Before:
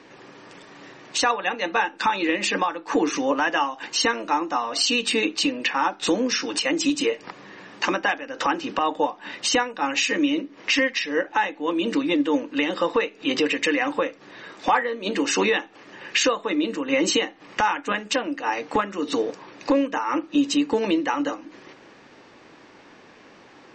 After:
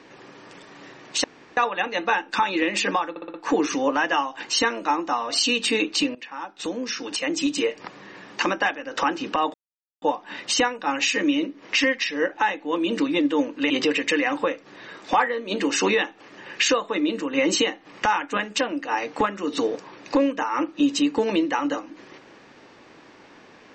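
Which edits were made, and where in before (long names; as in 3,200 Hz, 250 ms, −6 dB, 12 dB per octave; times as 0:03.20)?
0:01.24: splice in room tone 0.33 s
0:02.77: stutter 0.06 s, 5 plays
0:05.58–0:07.19: fade in, from −18 dB
0:08.97: splice in silence 0.48 s
0:12.65–0:13.25: remove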